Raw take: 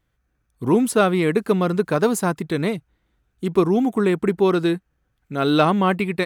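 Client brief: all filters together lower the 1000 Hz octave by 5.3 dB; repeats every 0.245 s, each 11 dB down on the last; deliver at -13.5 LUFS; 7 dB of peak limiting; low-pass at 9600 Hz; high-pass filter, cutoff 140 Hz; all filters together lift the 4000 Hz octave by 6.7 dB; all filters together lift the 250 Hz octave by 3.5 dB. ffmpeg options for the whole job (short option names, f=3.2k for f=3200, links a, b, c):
-af "highpass=140,lowpass=9.6k,equalizer=f=250:t=o:g=6,equalizer=f=1k:t=o:g=-8.5,equalizer=f=4k:t=o:g=8,alimiter=limit=-10dB:level=0:latency=1,aecho=1:1:245|490|735:0.282|0.0789|0.0221,volume=6.5dB"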